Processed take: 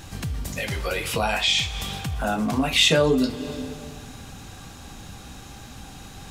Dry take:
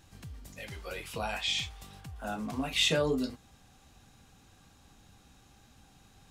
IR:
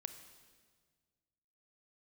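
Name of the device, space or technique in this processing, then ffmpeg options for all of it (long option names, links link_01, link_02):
ducked reverb: -filter_complex "[0:a]asplit=3[link_01][link_02][link_03];[1:a]atrim=start_sample=2205[link_04];[link_02][link_04]afir=irnorm=-1:irlink=0[link_05];[link_03]apad=whole_len=277962[link_06];[link_05][link_06]sidechaincompress=threshold=-43dB:ratio=8:attack=6.9:release=218,volume=12dB[link_07];[link_01][link_07]amix=inputs=2:normalize=0,volume=7dB"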